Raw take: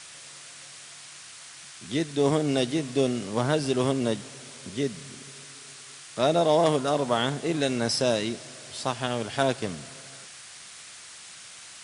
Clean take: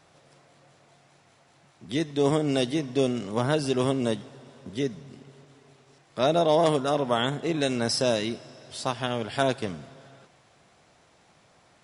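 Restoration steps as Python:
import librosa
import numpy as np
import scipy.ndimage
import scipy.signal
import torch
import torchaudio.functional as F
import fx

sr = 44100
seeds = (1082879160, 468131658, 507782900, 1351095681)

y = fx.noise_reduce(x, sr, print_start_s=1.31, print_end_s=1.81, reduce_db=15.0)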